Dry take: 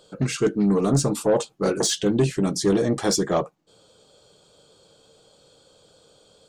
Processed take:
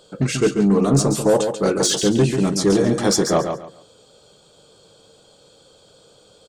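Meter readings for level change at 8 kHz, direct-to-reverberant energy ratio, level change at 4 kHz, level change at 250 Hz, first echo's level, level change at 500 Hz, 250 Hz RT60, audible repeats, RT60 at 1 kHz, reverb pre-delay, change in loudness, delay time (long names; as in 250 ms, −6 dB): +4.5 dB, no reverb audible, +4.5 dB, +4.0 dB, −7.0 dB, +4.0 dB, no reverb audible, 3, no reverb audible, no reverb audible, +4.0 dB, 139 ms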